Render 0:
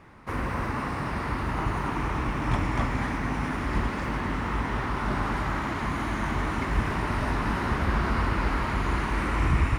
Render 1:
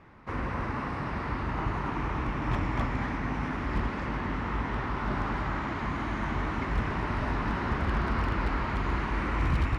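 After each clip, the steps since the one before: distance through air 100 m; wavefolder -17 dBFS; trim -2.5 dB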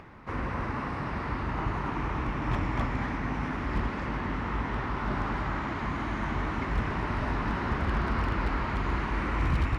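upward compressor, threshold -43 dBFS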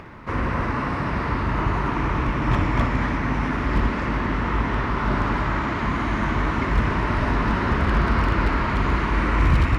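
band-stop 790 Hz, Q 12; on a send: flutter echo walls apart 10.3 m, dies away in 0.3 s; on the sum: trim +8 dB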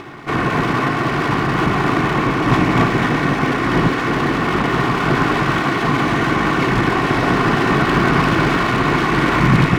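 comb filter that takes the minimum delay 2.7 ms; resonant low shelf 100 Hz -12.5 dB, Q 3; trim +8.5 dB

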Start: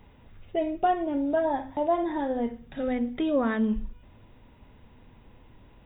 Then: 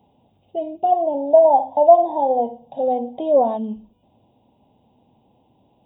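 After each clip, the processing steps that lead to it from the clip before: high-pass 150 Hz 12 dB/octave; time-frequency box 0.92–3.57 s, 460–1100 Hz +12 dB; FFT filter 260 Hz 0 dB, 470 Hz -2 dB, 790 Hz +7 dB, 1.3 kHz -20 dB, 1.9 kHz -24 dB, 2.9 kHz -4 dB; trim -1 dB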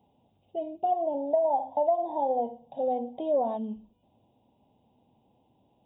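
compression 6:1, threshold -14 dBFS, peak gain reduction 8.5 dB; trim -7.5 dB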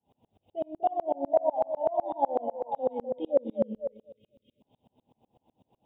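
spectral selection erased 2.88–4.61 s, 620–2000 Hz; repeats whose band climbs or falls 248 ms, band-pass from 470 Hz, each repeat 0.7 oct, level -3.5 dB; sawtooth tremolo in dB swelling 8 Hz, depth 33 dB; trim +7 dB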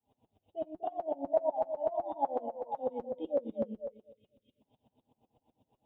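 comb of notches 180 Hz; trim -4 dB

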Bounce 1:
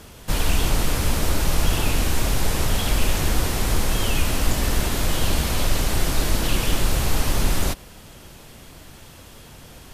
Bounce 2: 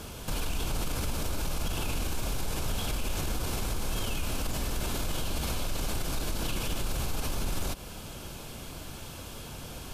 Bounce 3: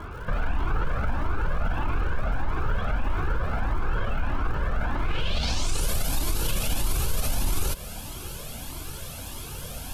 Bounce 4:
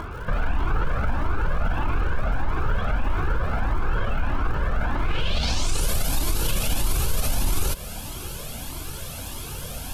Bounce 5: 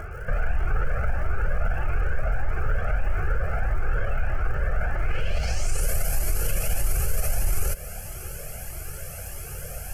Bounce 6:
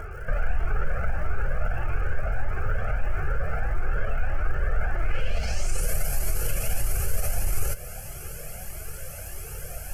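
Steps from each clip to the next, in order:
band-stop 1.9 kHz, Q 5.9; compression 2:1, threshold -26 dBFS, peak gain reduction 8 dB; peak limiter -24.5 dBFS, peak gain reduction 10.5 dB; trim +2 dB
low-pass sweep 1.5 kHz -> 12 kHz, 4.97–5.89 s; crackle 220 per s -45 dBFS; Shepard-style flanger rising 1.6 Hz; trim +7.5 dB
upward compressor, threshold -33 dBFS; trim +2.5 dB
static phaser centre 1 kHz, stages 6
flange 0.21 Hz, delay 2.1 ms, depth 8.7 ms, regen +67%; trim +3 dB

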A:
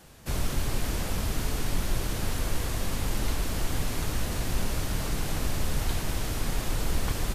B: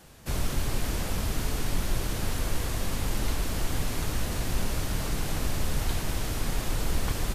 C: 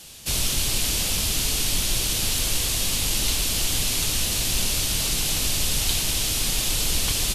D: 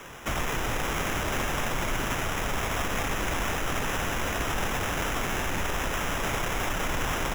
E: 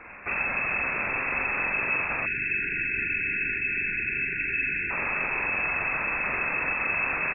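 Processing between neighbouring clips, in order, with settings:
no audible change
high-order bell 5.7 kHz +15 dB 2.7 oct
peak limiter -19 dBFS, peak gain reduction 10.5 dB; sample-and-hold 10×
frequency inversion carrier 2.6 kHz; doubling 43 ms -4.5 dB; spectral selection erased 2.26–4.90 s, 440–1400 Hz; trim -1.5 dB

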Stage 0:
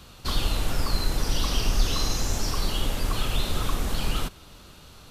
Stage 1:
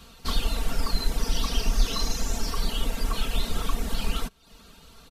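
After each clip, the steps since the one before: reverb removal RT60 0.61 s; comb 4.4 ms; trim -2 dB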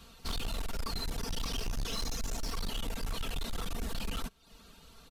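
hard clipper -25.5 dBFS, distortion -6 dB; trim -5 dB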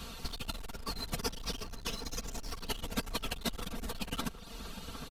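compressor with a negative ratio -39 dBFS, ratio -0.5; echo from a far wall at 130 m, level -9 dB; trim +2.5 dB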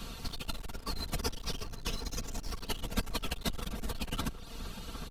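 octave divider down 2 oct, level +3 dB

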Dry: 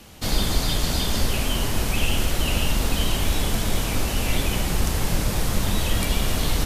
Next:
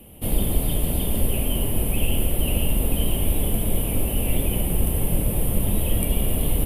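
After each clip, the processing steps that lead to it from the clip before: FFT filter 550 Hz 0 dB, 1.5 kHz -17 dB, 3 kHz -5 dB, 4.3 kHz -23 dB, 6.4 kHz -26 dB, 10 kHz +5 dB; trim +1 dB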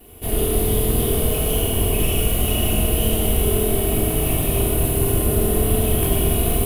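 comb filter that takes the minimum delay 2.7 ms; reverberation RT60 2.3 s, pre-delay 4 ms, DRR -5 dB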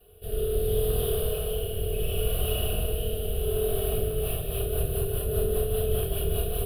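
rotary cabinet horn 0.7 Hz, later 5 Hz, at 3.73 s; static phaser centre 1.4 kHz, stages 8; small resonant body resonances 430/950/2000 Hz, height 8 dB, ringing for 45 ms; trim -6 dB

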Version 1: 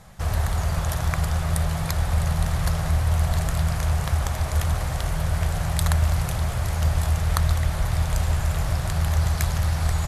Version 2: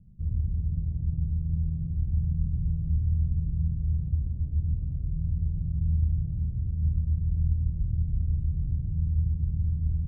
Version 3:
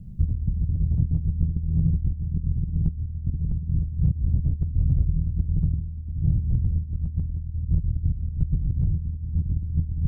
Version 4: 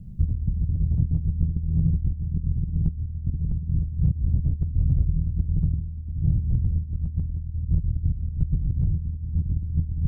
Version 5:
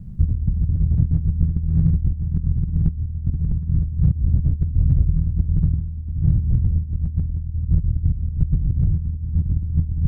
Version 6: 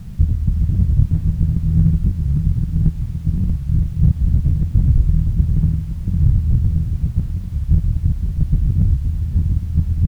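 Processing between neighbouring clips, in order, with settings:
inverse Chebyshev low-pass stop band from 1.5 kHz, stop band 80 dB; trim -4 dB
compressor with a negative ratio -31 dBFS, ratio -0.5; trim +8.5 dB
no audible change
median filter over 41 samples; trim +4.5 dB
added noise pink -56 dBFS; delay 519 ms -8 dB; warped record 45 rpm, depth 250 cents; trim +3 dB

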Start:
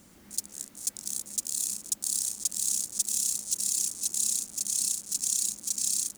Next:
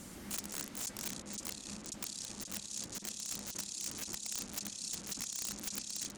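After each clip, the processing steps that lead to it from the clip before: compressor with a negative ratio -32 dBFS, ratio -0.5; low-pass that closes with the level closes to 2.3 kHz, closed at -27 dBFS; integer overflow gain 32 dB; trim +3.5 dB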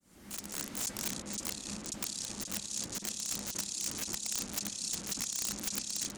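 fade-in on the opening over 0.73 s; trim +4.5 dB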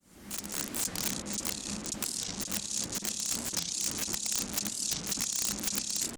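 warped record 45 rpm, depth 250 cents; trim +4 dB

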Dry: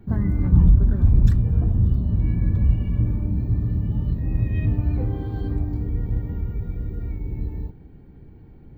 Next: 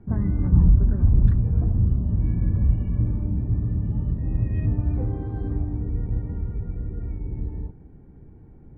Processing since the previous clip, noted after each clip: low-pass 1.6 kHz 12 dB/octave; trim -1.5 dB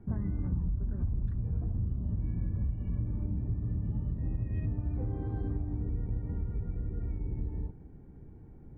compression 6:1, threshold -25 dBFS, peak gain reduction 14.5 dB; trim -3.5 dB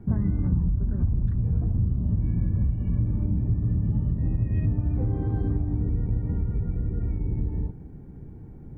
peaking EQ 150 Hz +4 dB 1.7 oct; trim +6 dB

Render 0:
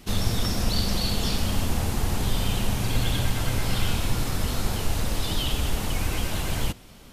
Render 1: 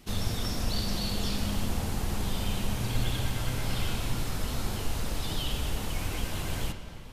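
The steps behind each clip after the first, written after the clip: reverberation RT60 3.3 s, pre-delay 8 ms, DRR 7.5 dB; trim -6 dB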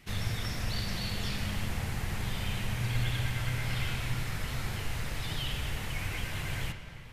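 graphic EQ 125/250/2000 Hz +8/-4/+11 dB; trim -5.5 dB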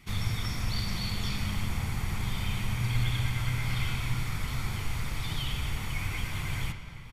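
comb 0.9 ms, depth 42%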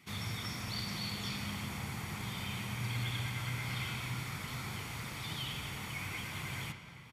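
high-pass 140 Hz 12 dB/octave; trim -3.5 dB

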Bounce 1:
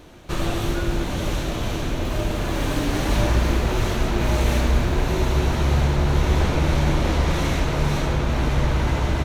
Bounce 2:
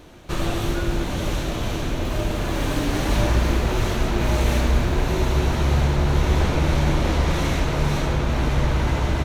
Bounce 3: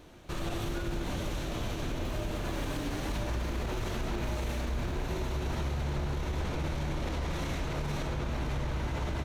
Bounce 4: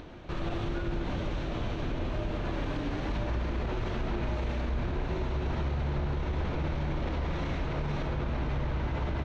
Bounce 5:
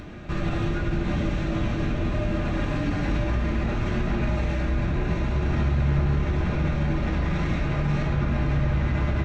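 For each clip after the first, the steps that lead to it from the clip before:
no audible change
peak limiter -17.5 dBFS, peak gain reduction 11 dB; trim -7.5 dB
distance through air 200 m; upward compressor, threshold -41 dBFS; trim +2 dB
reverberation RT60 0.45 s, pre-delay 3 ms, DRR 0 dB; trim +5.5 dB

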